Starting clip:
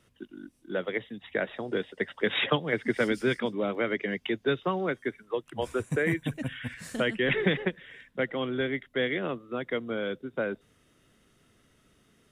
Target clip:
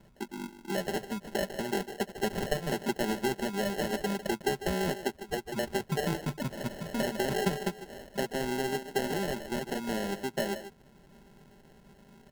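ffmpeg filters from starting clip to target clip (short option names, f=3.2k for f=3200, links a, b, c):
-filter_complex "[0:a]bass=f=250:g=2,treble=f=4k:g=-12,aecho=1:1:5.1:0.75,acompressor=threshold=-39dB:ratio=2.5,asplit=2[a][b];[b]adelay=150,highpass=300,lowpass=3.4k,asoftclip=type=hard:threshold=-32.5dB,volume=-9dB[c];[a][c]amix=inputs=2:normalize=0,acrusher=samples=37:mix=1:aa=0.000001,volume=5.5dB"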